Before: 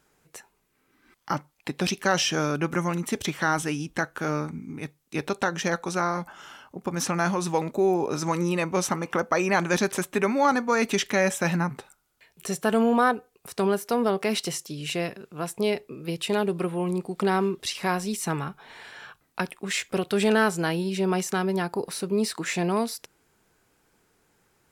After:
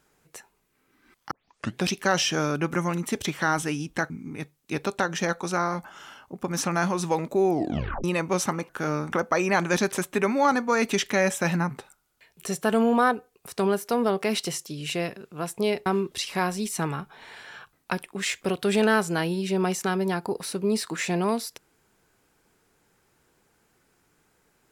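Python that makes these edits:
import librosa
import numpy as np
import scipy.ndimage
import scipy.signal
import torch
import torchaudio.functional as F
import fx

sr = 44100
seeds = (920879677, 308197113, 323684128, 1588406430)

y = fx.edit(x, sr, fx.tape_start(start_s=1.31, length_s=0.51),
    fx.move(start_s=4.1, length_s=0.43, to_s=9.12),
    fx.tape_stop(start_s=7.93, length_s=0.54),
    fx.cut(start_s=15.86, length_s=1.48), tone=tone)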